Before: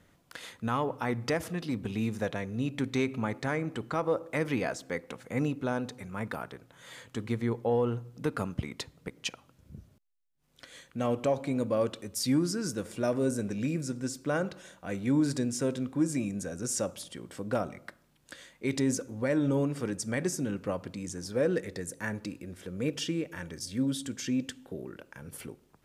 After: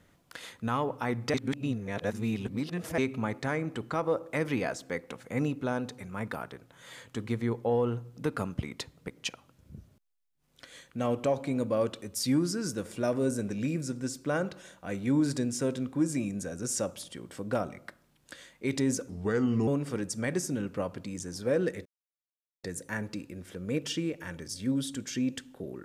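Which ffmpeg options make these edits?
ffmpeg -i in.wav -filter_complex "[0:a]asplit=6[link_01][link_02][link_03][link_04][link_05][link_06];[link_01]atrim=end=1.342[link_07];[link_02]atrim=start=1.338:end=2.982,asetpts=PTS-STARTPTS,areverse[link_08];[link_03]atrim=start=2.978:end=19.094[link_09];[link_04]atrim=start=19.09:end=19.57,asetpts=PTS-STARTPTS,asetrate=36162,aresample=44100[link_10];[link_05]atrim=start=19.566:end=21.75,asetpts=PTS-STARTPTS,afade=type=out:start_time=2.18:duration=0.004:curve=hsin,apad=pad_dur=0.78[link_11];[link_06]atrim=start=21.75,asetpts=PTS-STARTPTS,afade=type=in:duration=0.004:curve=hsin[link_12];[link_07][link_08]acrossfade=duration=0.004:curve1=hsin:curve2=hsin[link_13];[link_13][link_09]acrossfade=duration=0.004:curve1=hsin:curve2=hsin[link_14];[link_14][link_10]acrossfade=duration=0.004:curve1=hsin:curve2=hsin[link_15];[link_11][link_12]concat=n=2:v=0:a=1[link_16];[link_15][link_16]acrossfade=duration=0.004:curve1=hsin:curve2=hsin" out.wav

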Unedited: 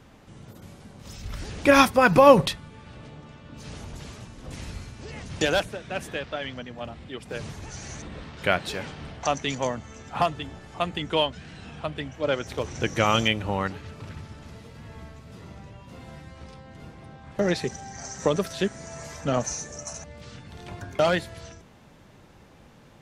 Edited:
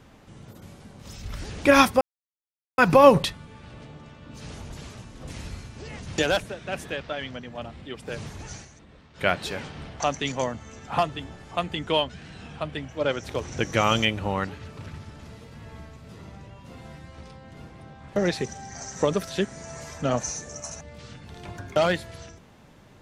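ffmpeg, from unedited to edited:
ffmpeg -i in.wav -filter_complex "[0:a]asplit=4[link_01][link_02][link_03][link_04];[link_01]atrim=end=2.01,asetpts=PTS-STARTPTS,afade=type=out:start_time=2.006:duration=0.004:curve=hsin,apad=pad_dur=0.77[link_05];[link_02]atrim=start=2.01:end=7.91,asetpts=PTS-STARTPTS,afade=type=in:duration=0.004:curve=hsin,afade=type=out:start_time=5.76:duration=0.14:silence=0.237137[link_06];[link_03]atrim=start=7.91:end=8.36,asetpts=PTS-STARTPTS,volume=-12.5dB[link_07];[link_04]atrim=start=8.36,asetpts=PTS-STARTPTS,afade=type=in:duration=0.14:silence=0.237137[link_08];[link_05][link_06][link_07][link_08]concat=n=4:v=0:a=1" out.wav

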